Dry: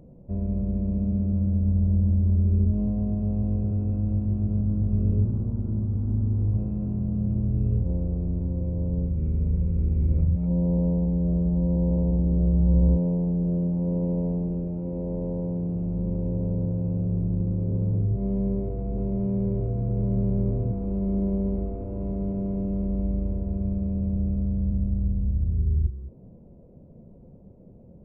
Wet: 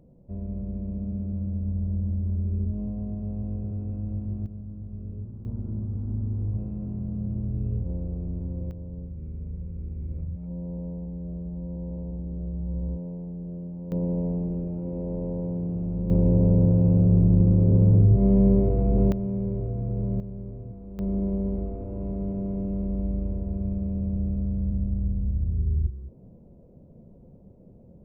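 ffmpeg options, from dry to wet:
-af "asetnsamples=n=441:p=0,asendcmd='4.46 volume volume -14dB;5.45 volume volume -4.5dB;8.71 volume volume -11dB;13.92 volume volume -1dB;16.1 volume volume 7.5dB;19.12 volume volume -2.5dB;20.2 volume volume -12.5dB;20.99 volume volume -1.5dB',volume=-6dB"

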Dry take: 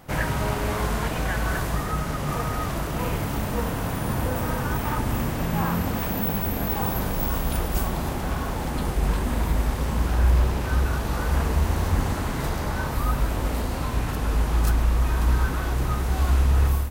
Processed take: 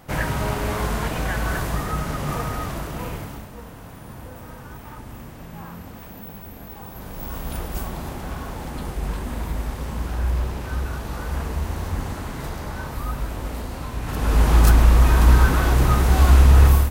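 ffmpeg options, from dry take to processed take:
-af "volume=21.5dB,afade=t=out:st=2.28:d=0.9:silence=0.501187,afade=t=out:st=3.18:d=0.31:silence=0.398107,afade=t=in:st=6.91:d=0.63:silence=0.354813,afade=t=in:st=14.01:d=0.49:silence=0.266073"

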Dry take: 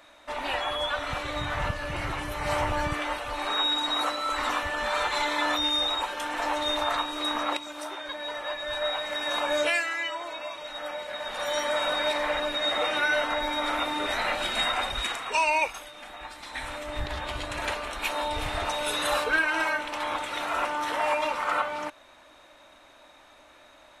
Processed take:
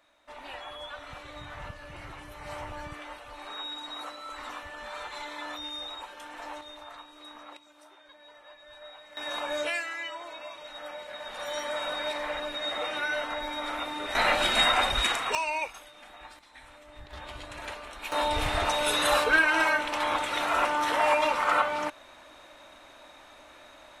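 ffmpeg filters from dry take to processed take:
-af "asetnsamples=n=441:p=0,asendcmd='6.61 volume volume -18.5dB;9.17 volume volume -5.5dB;14.15 volume volume 4dB;15.35 volume volume -6.5dB;16.39 volume volume -15.5dB;17.13 volume volume -8.5dB;18.12 volume volume 2.5dB',volume=-12dB"

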